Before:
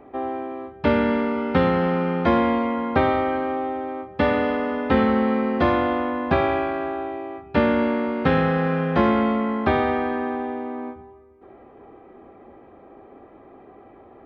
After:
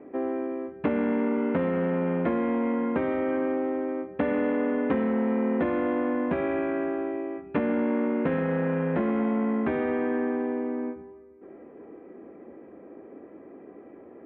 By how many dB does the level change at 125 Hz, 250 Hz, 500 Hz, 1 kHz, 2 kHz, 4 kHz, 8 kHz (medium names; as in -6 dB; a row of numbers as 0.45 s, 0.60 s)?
-7.0 dB, -3.0 dB, -4.5 dB, -11.0 dB, -8.0 dB, under -15 dB, no reading